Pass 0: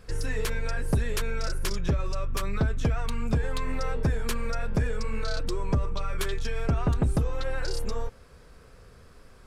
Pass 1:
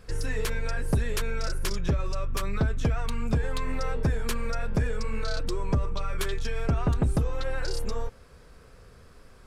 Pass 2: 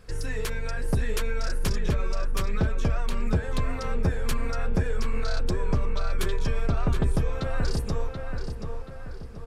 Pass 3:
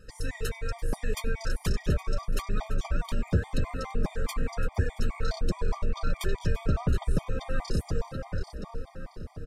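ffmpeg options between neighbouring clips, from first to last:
ffmpeg -i in.wav -af anull out.wav
ffmpeg -i in.wav -filter_complex "[0:a]asplit=2[link_01][link_02];[link_02]adelay=731,lowpass=frequency=3100:poles=1,volume=-4.5dB,asplit=2[link_03][link_04];[link_04]adelay=731,lowpass=frequency=3100:poles=1,volume=0.48,asplit=2[link_05][link_06];[link_06]adelay=731,lowpass=frequency=3100:poles=1,volume=0.48,asplit=2[link_07][link_08];[link_08]adelay=731,lowpass=frequency=3100:poles=1,volume=0.48,asplit=2[link_09][link_10];[link_10]adelay=731,lowpass=frequency=3100:poles=1,volume=0.48,asplit=2[link_11][link_12];[link_12]adelay=731,lowpass=frequency=3100:poles=1,volume=0.48[link_13];[link_01][link_03][link_05][link_07][link_09][link_11][link_13]amix=inputs=7:normalize=0,volume=-1dB" out.wav
ffmpeg -i in.wav -filter_complex "[0:a]asplit=5[link_01][link_02][link_03][link_04][link_05];[link_02]adelay=338,afreqshift=77,volume=-17dB[link_06];[link_03]adelay=676,afreqshift=154,volume=-23dB[link_07];[link_04]adelay=1014,afreqshift=231,volume=-29dB[link_08];[link_05]adelay=1352,afreqshift=308,volume=-35.1dB[link_09];[link_01][link_06][link_07][link_08][link_09]amix=inputs=5:normalize=0,afftfilt=real='re*gt(sin(2*PI*4.8*pts/sr)*(1-2*mod(floor(b*sr/1024/620),2)),0)':imag='im*gt(sin(2*PI*4.8*pts/sr)*(1-2*mod(floor(b*sr/1024/620),2)),0)':win_size=1024:overlap=0.75" out.wav

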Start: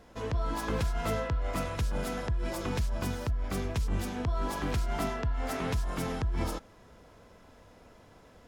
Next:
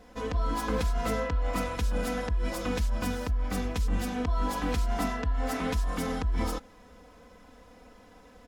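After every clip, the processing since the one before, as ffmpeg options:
ffmpeg -i in.wav -af "aecho=1:1:4:0.76" out.wav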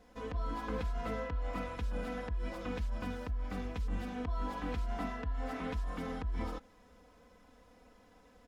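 ffmpeg -i in.wav -filter_complex "[0:a]acrossover=split=3700[link_01][link_02];[link_02]acompressor=threshold=-56dB:ratio=4:attack=1:release=60[link_03];[link_01][link_03]amix=inputs=2:normalize=0,volume=-8dB" out.wav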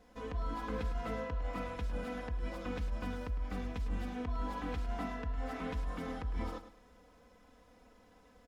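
ffmpeg -i in.wav -af "aecho=1:1:106|212|318:0.251|0.0754|0.0226,volume=-1dB" out.wav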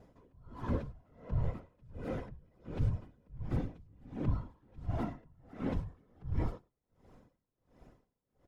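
ffmpeg -i in.wav -af "afftfilt=real='hypot(re,im)*cos(2*PI*random(0))':imag='hypot(re,im)*sin(2*PI*random(1))':win_size=512:overlap=0.75,tiltshelf=frequency=640:gain=6,aeval=exprs='val(0)*pow(10,-32*(0.5-0.5*cos(2*PI*1.4*n/s))/20)':channel_layout=same,volume=7.5dB" out.wav

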